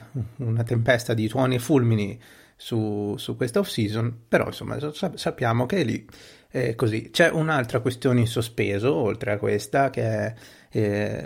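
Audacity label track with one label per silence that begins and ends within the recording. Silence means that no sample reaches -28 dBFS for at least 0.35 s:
2.120000	2.660000	silence
5.970000	6.550000	silence
10.300000	10.750000	silence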